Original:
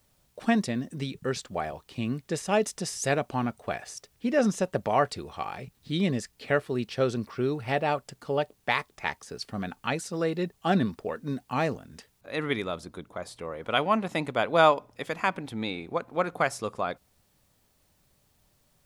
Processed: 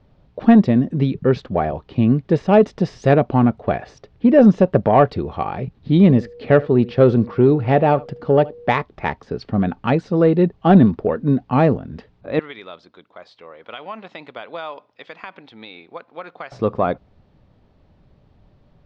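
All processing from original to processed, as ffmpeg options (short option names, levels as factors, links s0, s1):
-filter_complex "[0:a]asettb=1/sr,asplit=3[s0][s1][s2];[s0]atrim=end=6.024[s3];[s1]atrim=start=6.02:end=8.73,asetpts=PTS-STARTPTS,afade=t=in:d=0.004:c=qsin,afade=t=out:st=2.706:d=0.004:c=qsin,aeval=exprs='val(0)+0.00316*sin(2*PI*480*n/s)':c=same,aecho=1:1:76:0.0794,atrim=end_sample=119511[s4];[s2]atrim=start=8.726[s5];[s3][s4]acrossfade=d=0.004:c1=hsin:c2=qsin[s6];[s6][s5]acrossfade=d=0.004:c1=qsin:c2=hsin,asettb=1/sr,asplit=3[s7][s8][s9];[s7]atrim=end=12.394[s10];[s8]atrim=start=12.39:end=16.52,asetpts=PTS-STARTPTS,afade=t=in:d=0.004:c=qsin,afade=t=out:st=4.126:d=0.004:c=qsin,bandpass=f=4900:t=q:w=0.76,acompressor=threshold=0.0158:ratio=3:attack=3.2:release=140:knee=1:detection=peak[s11];[s9]atrim=start=16.516[s12];[s10][s11]acrossfade=d=0.004:c1=hsin:c2=qsin[s13];[s13][s12]acrossfade=d=0.004:c1=qsin:c2=hsin,lowpass=f=4200:w=0.5412,lowpass=f=4200:w=1.3066,tiltshelf=f=1100:g=8,acontrast=75,volume=1.19"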